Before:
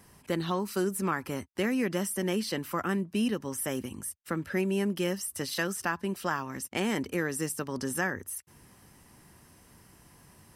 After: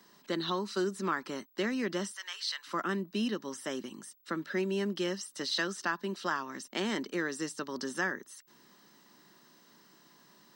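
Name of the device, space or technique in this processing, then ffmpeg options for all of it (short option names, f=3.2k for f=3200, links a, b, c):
old television with a line whistle: -filter_complex "[0:a]asettb=1/sr,asplit=3[a][b][c];[a]atrim=end=2.114[d];[b]atrim=start=2.11:end=2.67,asetpts=PTS-STARTPTS,afade=t=in:d=0.004:c=qsin,afade=t=out:st=0.556:d=0.004:c=qsin,highpass=f=1.1k:w=0.5412,highpass=f=1.1k:w=1.3066[e];[c]atrim=start=2.666[f];[d][e]acrossfade=d=0.004:c1=hsin:c2=qsin[g];[g][f]acrossfade=d=0.004:c1=qsin:c2=hsin,highpass=f=210:w=0.5412,highpass=f=210:w=1.3066,equalizer=f=260:t=q:w=4:g=-4,equalizer=f=490:t=q:w=4:g=-6,equalizer=f=780:t=q:w=4:g=-6,equalizer=f=2.4k:t=q:w=4:g=-7,equalizer=f=3.9k:t=q:w=4:g=8,lowpass=f=6.9k:w=0.5412,lowpass=f=6.9k:w=1.3066,aeval=exprs='val(0)+0.000562*sin(2*PI*15734*n/s)':c=same"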